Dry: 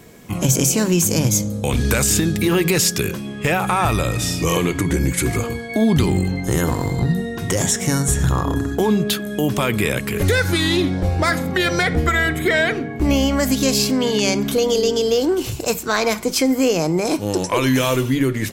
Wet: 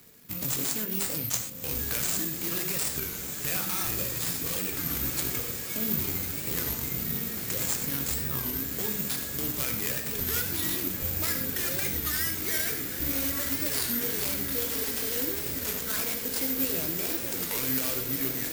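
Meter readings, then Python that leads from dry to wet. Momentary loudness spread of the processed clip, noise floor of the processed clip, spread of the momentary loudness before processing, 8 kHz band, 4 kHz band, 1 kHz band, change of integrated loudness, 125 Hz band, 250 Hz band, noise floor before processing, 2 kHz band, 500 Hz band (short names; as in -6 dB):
3 LU, -35 dBFS, 5 LU, -8.5 dB, -10.5 dB, -17.5 dB, -9.0 dB, -18.0 dB, -17.5 dB, -29 dBFS, -13.5 dB, -18.5 dB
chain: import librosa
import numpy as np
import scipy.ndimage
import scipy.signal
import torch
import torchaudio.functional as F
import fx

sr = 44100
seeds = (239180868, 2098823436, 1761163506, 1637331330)

p1 = scipy.ndimage.median_filter(x, 15, mode='constant')
p2 = scipy.signal.lfilter([1.0, -0.9], [1.0], p1)
p3 = fx.dereverb_blind(p2, sr, rt60_s=1.1)
p4 = fx.peak_eq(p3, sr, hz=880.0, db=-10.0, octaves=0.96)
p5 = fx.over_compress(p4, sr, threshold_db=-41.0, ratio=-1.0)
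p6 = p4 + F.gain(torch.from_numpy(p5), -2.0).numpy()
p7 = fx.echo_diffused(p6, sr, ms=1357, feedback_pct=74, wet_db=-7.0)
p8 = fx.rev_gated(p7, sr, seeds[0], gate_ms=140, shape='flat', drr_db=4.0)
p9 = (np.kron(p8[::3], np.eye(3)[0]) * 3)[:len(p8)]
p10 = fx.record_warp(p9, sr, rpm=33.33, depth_cents=160.0)
y = F.gain(torch.from_numpy(p10), -2.5).numpy()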